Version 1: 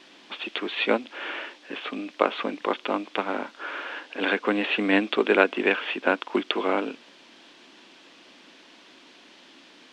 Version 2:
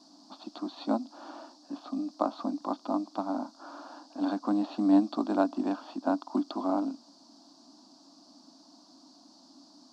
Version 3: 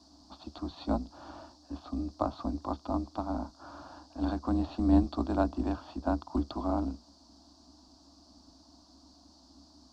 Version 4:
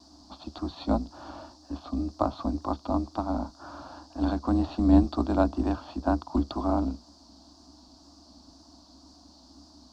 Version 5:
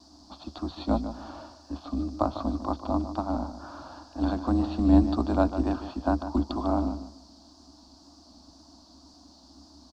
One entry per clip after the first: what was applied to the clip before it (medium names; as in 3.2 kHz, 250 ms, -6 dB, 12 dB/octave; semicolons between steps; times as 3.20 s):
FFT filter 130 Hz 0 dB, 290 Hz +12 dB, 440 Hz -16 dB, 660 Hz +8 dB, 1.2 kHz 0 dB, 2.1 kHz -28 dB, 3.2 kHz -17 dB, 4.6 kHz +12 dB, 10 kHz +2 dB; trim -8.5 dB
octave divider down 2 oct, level -2 dB; trim -2.5 dB
vibrato 2 Hz 33 cents; trim +4.5 dB
feedback delay 149 ms, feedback 26%, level -11 dB